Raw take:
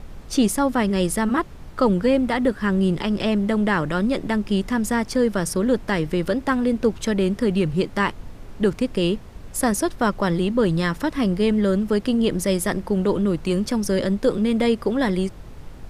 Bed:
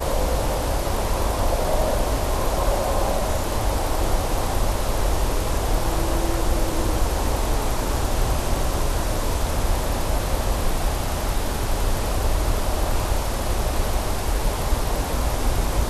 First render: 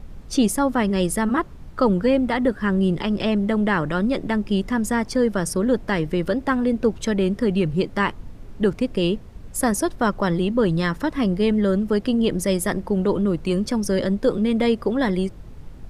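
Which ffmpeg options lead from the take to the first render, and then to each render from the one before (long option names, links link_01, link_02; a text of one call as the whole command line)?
ffmpeg -i in.wav -af "afftdn=noise_reduction=6:noise_floor=-40" out.wav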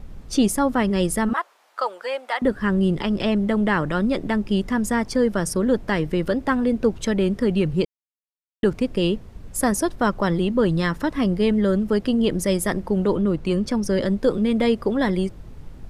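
ffmpeg -i in.wav -filter_complex "[0:a]asettb=1/sr,asplit=3[link_01][link_02][link_03];[link_01]atrim=end=1.334[link_04];[link_02]atrim=start=1.33:end=2.42,asetpts=PTS-STARTPTS,afade=type=in:duration=0.004:curve=qsin,afade=type=out:start_time=1.086:duration=0.004:curve=qsin,highpass=frequency=630:width=0.5412,highpass=frequency=630:width=1.3066[link_05];[link_03]atrim=start=2.416[link_06];[link_04][link_05]acrossfade=duration=0.004:curve1=hsin:curve2=qsin[link_07];[link_07][link_06]acrossfade=duration=0.004:curve1=qsin:curve2=hsin,asettb=1/sr,asplit=3[link_08][link_09][link_10];[link_08]atrim=end=13.154[link_11];[link_09]atrim=start=13.15:end=14.01,asetpts=PTS-STARTPTS,afade=type=in:duration=0.004:curve=qsin,afade=type=out:start_time=0.856:duration=0.004:curve=qsin,highshelf=frequency=7400:gain=-7[link_12];[link_10]atrim=start=14.006[link_13];[link_11][link_12]acrossfade=duration=0.004:curve1=hsin:curve2=qsin[link_14];[link_14][link_13]acrossfade=duration=0.004:curve1=qsin:curve2=hsin,asplit=3[link_15][link_16][link_17];[link_15]atrim=end=7.85,asetpts=PTS-STARTPTS,afade=type=out:start_time=7.846:duration=0.004:curve=hsin[link_18];[link_16]atrim=start=7.85:end=8.63,asetpts=PTS-STARTPTS,volume=0[link_19];[link_17]atrim=start=8.63,asetpts=PTS-STARTPTS,afade=type=in:duration=0.004:curve=hsin[link_20];[link_18][link_19][link_20]concat=n=3:v=0:a=1" out.wav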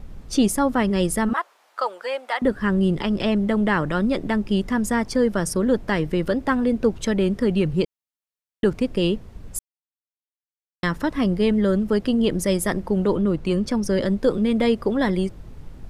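ffmpeg -i in.wav -filter_complex "[0:a]asplit=3[link_01][link_02][link_03];[link_01]atrim=end=9.59,asetpts=PTS-STARTPTS,afade=type=out:start_time=9.586:duration=0.004:curve=hsin[link_04];[link_02]atrim=start=9.59:end=10.83,asetpts=PTS-STARTPTS,volume=0[link_05];[link_03]atrim=start=10.83,asetpts=PTS-STARTPTS,afade=type=in:duration=0.004:curve=hsin[link_06];[link_04][link_05][link_06]concat=n=3:v=0:a=1" out.wav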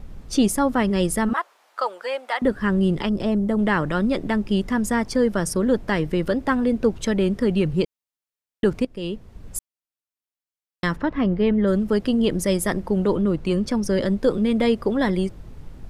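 ffmpeg -i in.wav -filter_complex "[0:a]asettb=1/sr,asplit=3[link_01][link_02][link_03];[link_01]atrim=end=3.094[link_04];[link_02]atrim=start=3.09:end=3.59,asetpts=PTS-STARTPTS,afade=type=in:duration=0.004:curve=qsin,afade=type=out:start_time=0.496:duration=0.004:curve=qsin,equalizer=frequency=2500:width_type=o:width=2.1:gain=-10.5[link_05];[link_03]atrim=start=3.586[link_06];[link_04][link_05]acrossfade=duration=0.004:curve1=hsin:curve2=qsin[link_07];[link_07][link_06]acrossfade=duration=0.004:curve1=qsin:curve2=hsin,asplit=3[link_08][link_09][link_10];[link_08]afade=type=out:start_time=10.95:duration=0.02[link_11];[link_09]lowpass=2600,afade=type=in:start_time=10.95:duration=0.02,afade=type=out:start_time=11.66:duration=0.02[link_12];[link_10]afade=type=in:start_time=11.66:duration=0.02[link_13];[link_11][link_12][link_13]amix=inputs=3:normalize=0,asplit=2[link_14][link_15];[link_14]atrim=end=8.85,asetpts=PTS-STARTPTS,afade=type=out:start_time=8.846:duration=0.004:curve=hsin:silence=0.149624[link_16];[link_15]atrim=start=8.85,asetpts=PTS-STARTPTS,afade=type=in:duration=0.71:silence=0.149624[link_17];[link_16][link_17]concat=n=2:v=0:a=1" out.wav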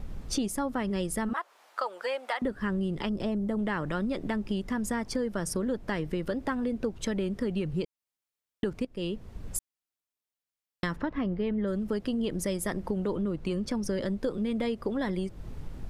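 ffmpeg -i in.wav -af "acompressor=threshold=-29dB:ratio=4" out.wav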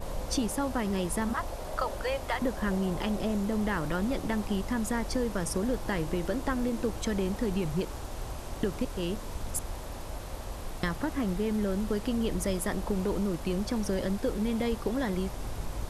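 ffmpeg -i in.wav -i bed.wav -filter_complex "[1:a]volume=-16dB[link_01];[0:a][link_01]amix=inputs=2:normalize=0" out.wav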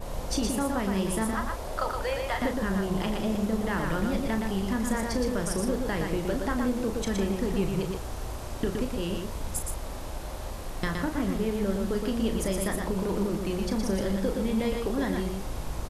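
ffmpeg -i in.wav -filter_complex "[0:a]asplit=2[link_01][link_02];[link_02]adelay=36,volume=-8dB[link_03];[link_01][link_03]amix=inputs=2:normalize=0,asplit=2[link_04][link_05];[link_05]aecho=0:1:118:0.631[link_06];[link_04][link_06]amix=inputs=2:normalize=0" out.wav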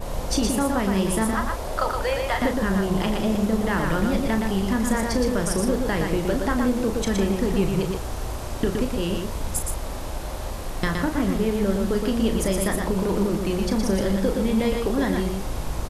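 ffmpeg -i in.wav -af "volume=5.5dB" out.wav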